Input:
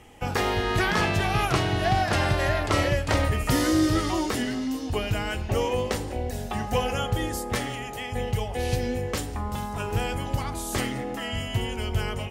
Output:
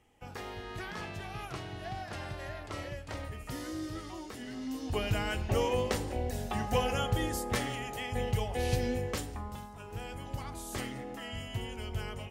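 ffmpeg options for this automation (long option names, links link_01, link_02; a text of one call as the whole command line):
ffmpeg -i in.wav -af "volume=3dB,afade=type=in:start_time=4.39:duration=0.68:silence=0.223872,afade=type=out:start_time=8.91:duration=0.85:silence=0.223872,afade=type=in:start_time=9.76:duration=0.75:silence=0.446684" out.wav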